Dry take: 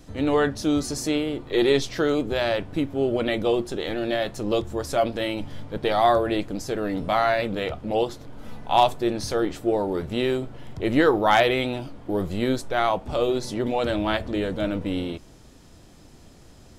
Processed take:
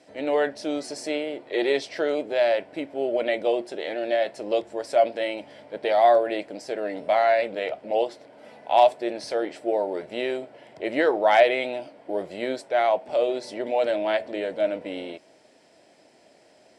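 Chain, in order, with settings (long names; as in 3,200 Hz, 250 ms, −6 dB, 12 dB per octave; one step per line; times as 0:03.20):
loudspeaker in its box 400–8,800 Hz, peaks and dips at 620 Hz +9 dB, 1,200 Hz −10 dB, 2,100 Hz +4 dB, 3,600 Hz −5 dB, 6,600 Hz −10 dB
level −1.5 dB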